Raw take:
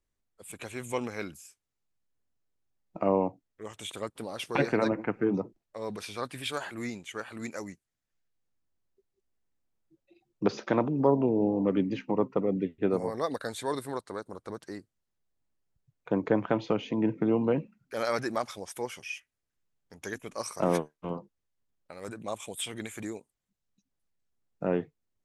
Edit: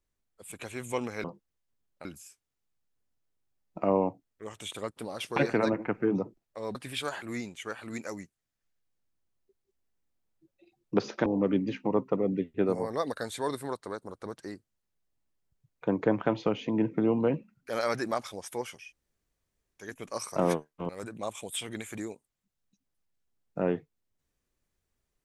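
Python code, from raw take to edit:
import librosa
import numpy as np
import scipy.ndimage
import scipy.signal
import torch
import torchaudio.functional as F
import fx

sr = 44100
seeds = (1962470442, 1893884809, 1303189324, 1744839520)

y = fx.edit(x, sr, fx.cut(start_s=5.94, length_s=0.3),
    fx.cut(start_s=10.75, length_s=0.75),
    fx.room_tone_fill(start_s=19.05, length_s=1.05, crossfade_s=0.24),
    fx.move(start_s=21.13, length_s=0.81, to_s=1.24), tone=tone)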